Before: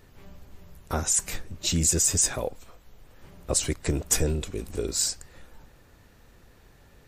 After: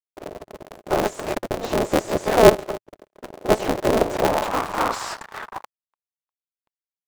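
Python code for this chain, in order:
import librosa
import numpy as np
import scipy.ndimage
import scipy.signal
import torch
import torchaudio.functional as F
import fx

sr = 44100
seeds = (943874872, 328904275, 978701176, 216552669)

y = fx.noise_reduce_blind(x, sr, reduce_db=10)
y = fx.fuzz(y, sr, gain_db=47.0, gate_db=-53.0)
y = fx.filter_sweep_bandpass(y, sr, from_hz=500.0, to_hz=1000.0, start_s=4.09, end_s=4.62, q=4.8)
y = y * np.sign(np.sin(2.0 * np.pi * 110.0 * np.arange(len(y)) / sr))
y = F.gain(torch.from_numpy(y), 8.5).numpy()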